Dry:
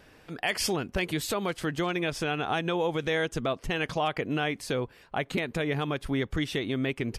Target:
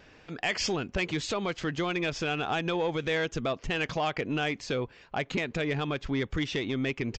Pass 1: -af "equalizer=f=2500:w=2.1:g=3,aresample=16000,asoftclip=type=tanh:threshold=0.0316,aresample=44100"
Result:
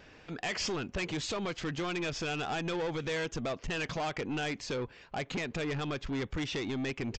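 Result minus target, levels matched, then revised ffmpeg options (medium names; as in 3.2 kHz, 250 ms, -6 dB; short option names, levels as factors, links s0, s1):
saturation: distortion +11 dB
-af "equalizer=f=2500:w=2.1:g=3,aresample=16000,asoftclip=type=tanh:threshold=0.106,aresample=44100"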